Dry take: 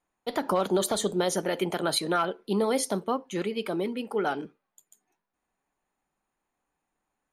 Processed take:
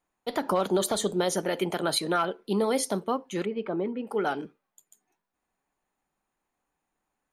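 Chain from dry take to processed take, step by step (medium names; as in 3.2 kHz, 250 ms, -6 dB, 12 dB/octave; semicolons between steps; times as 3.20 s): 3.45–4.07 s: low-pass 1.6 kHz 12 dB/octave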